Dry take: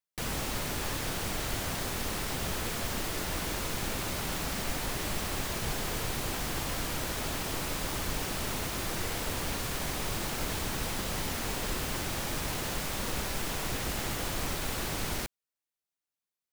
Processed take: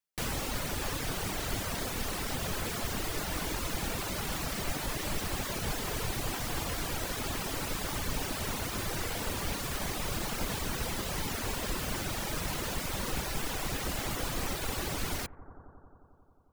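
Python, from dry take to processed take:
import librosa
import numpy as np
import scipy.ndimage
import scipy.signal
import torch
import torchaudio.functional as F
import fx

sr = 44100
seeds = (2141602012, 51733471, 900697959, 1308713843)

y = fx.echo_bbd(x, sr, ms=89, stages=1024, feedback_pct=83, wet_db=-12)
y = fx.dereverb_blind(y, sr, rt60_s=0.81)
y = y * 10.0 ** (1.0 / 20.0)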